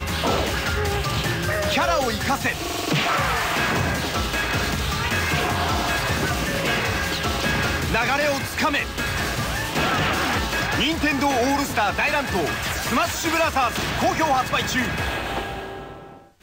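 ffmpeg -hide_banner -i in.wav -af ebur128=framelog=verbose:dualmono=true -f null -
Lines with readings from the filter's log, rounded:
Integrated loudness:
  I:         -18.9 LUFS
  Threshold: -29.1 LUFS
Loudness range:
  LRA:         1.0 LU
  Threshold: -38.9 LUFS
  LRA low:   -19.3 LUFS
  LRA high:  -18.2 LUFS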